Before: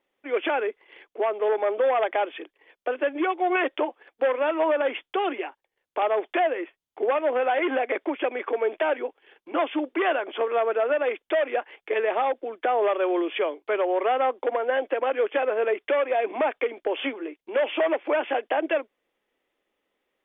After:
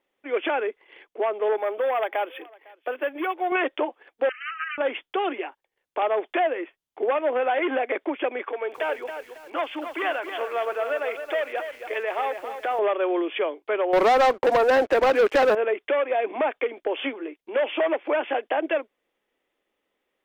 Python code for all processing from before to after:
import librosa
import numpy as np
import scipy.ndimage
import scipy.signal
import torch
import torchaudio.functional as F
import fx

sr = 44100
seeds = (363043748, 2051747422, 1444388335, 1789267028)

y = fx.chain(x, sr, fx.low_shelf(hz=370.0, db=-8.0),
    fx.echo_single(ms=504, db=-24.0),
    fx.resample_linear(factor=3), at=(1.57, 3.52))
y = fx.chain(y, sr, fx.self_delay(depth_ms=0.26),
    fx.brickwall_bandpass(low_hz=1200.0, high_hz=3100.0), at=(4.29, 4.78))
y = fx.chain(y, sr, fx.highpass(hz=690.0, slope=6),
    fx.echo_crushed(ms=273, feedback_pct=35, bits=8, wet_db=-8.0), at=(8.44, 12.79))
y = fx.chain(y, sr, fx.lowpass(hz=2100.0, slope=12),
    fx.leveller(passes=3), at=(13.93, 15.55))